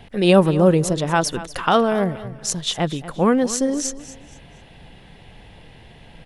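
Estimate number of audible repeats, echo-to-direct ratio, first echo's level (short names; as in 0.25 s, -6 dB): 2, -15.0 dB, -15.5 dB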